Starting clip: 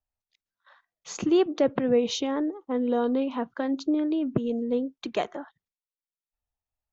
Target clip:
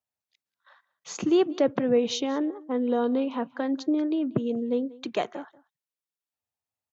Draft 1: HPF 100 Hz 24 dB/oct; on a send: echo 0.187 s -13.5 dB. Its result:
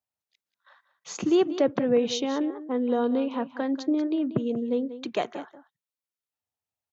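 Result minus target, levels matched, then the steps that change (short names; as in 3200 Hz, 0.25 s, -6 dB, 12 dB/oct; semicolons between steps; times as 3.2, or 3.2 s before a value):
echo-to-direct +8 dB
change: echo 0.187 s -21.5 dB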